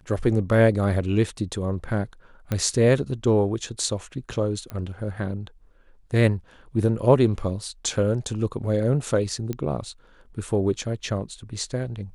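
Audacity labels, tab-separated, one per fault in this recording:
2.520000	2.520000	click −13 dBFS
4.700000	4.700000	click −20 dBFS
9.530000	9.530000	click −17 dBFS

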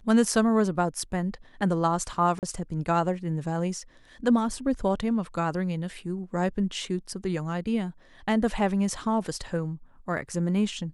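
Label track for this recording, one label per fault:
2.390000	2.430000	drop-out 38 ms

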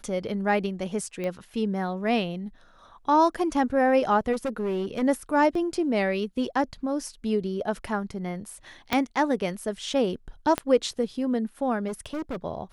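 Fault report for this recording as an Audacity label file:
1.240000	1.240000	click −20 dBFS
4.320000	5.030000	clipping −24 dBFS
5.550000	5.550000	drop-out 3.4 ms
8.930000	8.930000	click −9 dBFS
10.580000	10.580000	click −11 dBFS
11.870000	12.360000	clipping −28 dBFS

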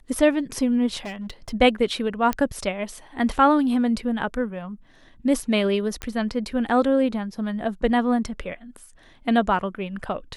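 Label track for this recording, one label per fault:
1.050000	1.530000	clipping −28.5 dBFS
2.330000	2.330000	click −10 dBFS
6.020000	6.020000	click −14 dBFS

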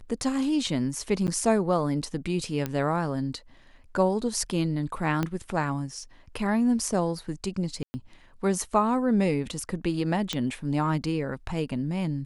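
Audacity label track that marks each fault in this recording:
1.270000	1.280000	drop-out 9.2 ms
2.660000	2.660000	click −15 dBFS
5.230000	5.230000	click −14 dBFS
7.830000	7.940000	drop-out 110 ms
10.330000	10.330000	click −13 dBFS

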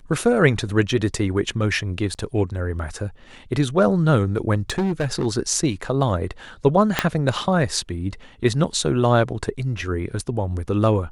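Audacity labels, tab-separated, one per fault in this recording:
2.140000	2.150000	drop-out 8.1 ms
4.700000	5.270000	clipping −17.5 dBFS
6.990000	6.990000	click −2 dBFS

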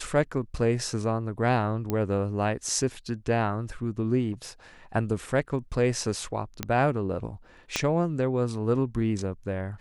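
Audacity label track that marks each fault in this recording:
1.900000	1.900000	click −15 dBFS
4.320000	4.490000	clipping −32.5 dBFS
6.630000	6.630000	click −12 dBFS
7.760000	7.760000	click −10 dBFS

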